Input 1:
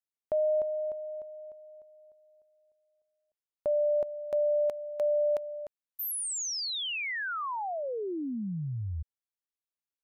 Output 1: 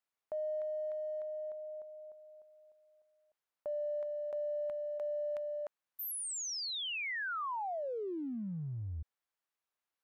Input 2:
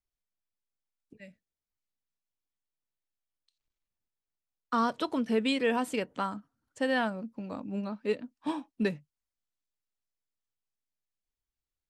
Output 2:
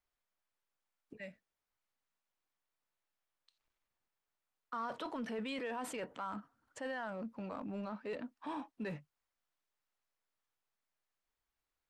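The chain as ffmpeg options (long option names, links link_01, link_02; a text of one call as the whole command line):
ffmpeg -i in.wav -af "equalizer=frequency=1100:width=0.39:gain=11.5,areverse,acompressor=threshold=-35dB:ratio=5:attack=0.18:release=37:knee=6:detection=peak,areverse,volume=-2.5dB" out.wav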